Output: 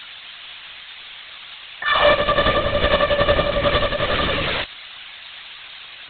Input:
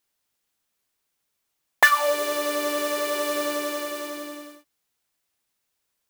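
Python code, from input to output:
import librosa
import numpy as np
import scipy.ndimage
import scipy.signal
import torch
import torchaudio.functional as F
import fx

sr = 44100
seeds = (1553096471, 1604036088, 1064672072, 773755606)

y = x + 0.5 * 10.0 ** (-11.5 / 20.0) * np.diff(np.sign(x), prepend=np.sign(x[:1]))
y = fx.over_compress(y, sr, threshold_db=-20.0, ratio=-0.5)
y = fx.lpc_vocoder(y, sr, seeds[0], excitation='whisper', order=16)
y = F.gain(torch.from_numpy(y), 8.0).numpy()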